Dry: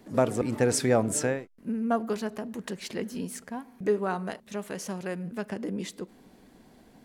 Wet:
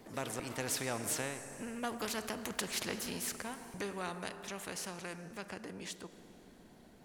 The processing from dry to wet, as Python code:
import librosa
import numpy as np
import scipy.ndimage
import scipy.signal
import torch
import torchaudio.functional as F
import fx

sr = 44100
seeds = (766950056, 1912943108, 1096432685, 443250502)

y = fx.doppler_pass(x, sr, speed_mps=15, closest_m=13.0, pass_at_s=2.63)
y = fx.rev_schroeder(y, sr, rt60_s=2.5, comb_ms=29, drr_db=17.5)
y = fx.spectral_comp(y, sr, ratio=2.0)
y = F.gain(torch.from_numpy(y), 1.5).numpy()